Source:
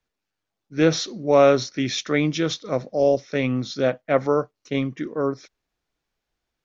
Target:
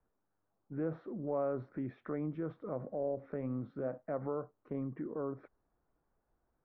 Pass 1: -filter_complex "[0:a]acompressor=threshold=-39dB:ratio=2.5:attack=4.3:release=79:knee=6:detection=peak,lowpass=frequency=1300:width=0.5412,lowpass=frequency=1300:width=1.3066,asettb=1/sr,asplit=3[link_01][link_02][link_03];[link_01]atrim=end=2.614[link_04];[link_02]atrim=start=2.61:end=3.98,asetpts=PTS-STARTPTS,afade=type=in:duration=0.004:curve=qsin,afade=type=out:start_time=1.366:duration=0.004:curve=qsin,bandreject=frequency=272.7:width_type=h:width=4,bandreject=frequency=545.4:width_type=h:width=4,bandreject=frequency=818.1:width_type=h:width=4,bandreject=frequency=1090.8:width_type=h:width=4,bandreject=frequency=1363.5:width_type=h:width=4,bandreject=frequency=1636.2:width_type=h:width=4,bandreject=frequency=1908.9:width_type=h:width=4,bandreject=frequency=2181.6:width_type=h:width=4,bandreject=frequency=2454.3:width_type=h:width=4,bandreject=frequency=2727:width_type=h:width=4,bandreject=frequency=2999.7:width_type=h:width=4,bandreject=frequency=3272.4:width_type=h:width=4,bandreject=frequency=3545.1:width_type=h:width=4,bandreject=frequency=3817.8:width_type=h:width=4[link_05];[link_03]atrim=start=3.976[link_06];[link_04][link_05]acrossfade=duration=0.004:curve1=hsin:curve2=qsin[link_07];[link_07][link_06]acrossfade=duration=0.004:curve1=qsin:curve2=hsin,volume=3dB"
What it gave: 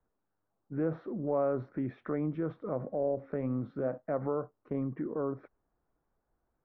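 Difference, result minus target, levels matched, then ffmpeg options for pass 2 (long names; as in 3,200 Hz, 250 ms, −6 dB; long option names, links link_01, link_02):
downward compressor: peak gain reduction −5 dB
-filter_complex "[0:a]acompressor=threshold=-47dB:ratio=2.5:attack=4.3:release=79:knee=6:detection=peak,lowpass=frequency=1300:width=0.5412,lowpass=frequency=1300:width=1.3066,asettb=1/sr,asplit=3[link_01][link_02][link_03];[link_01]atrim=end=2.614[link_04];[link_02]atrim=start=2.61:end=3.98,asetpts=PTS-STARTPTS,afade=type=in:duration=0.004:curve=qsin,afade=type=out:start_time=1.366:duration=0.004:curve=qsin,bandreject=frequency=272.7:width_type=h:width=4,bandreject=frequency=545.4:width_type=h:width=4,bandreject=frequency=818.1:width_type=h:width=4,bandreject=frequency=1090.8:width_type=h:width=4,bandreject=frequency=1363.5:width_type=h:width=4,bandreject=frequency=1636.2:width_type=h:width=4,bandreject=frequency=1908.9:width_type=h:width=4,bandreject=frequency=2181.6:width_type=h:width=4,bandreject=frequency=2454.3:width_type=h:width=4,bandreject=frequency=2727:width_type=h:width=4,bandreject=frequency=2999.7:width_type=h:width=4,bandreject=frequency=3272.4:width_type=h:width=4,bandreject=frequency=3545.1:width_type=h:width=4,bandreject=frequency=3817.8:width_type=h:width=4[link_05];[link_03]atrim=start=3.976[link_06];[link_04][link_05]acrossfade=duration=0.004:curve1=hsin:curve2=qsin[link_07];[link_07][link_06]acrossfade=duration=0.004:curve1=qsin:curve2=hsin,volume=3dB"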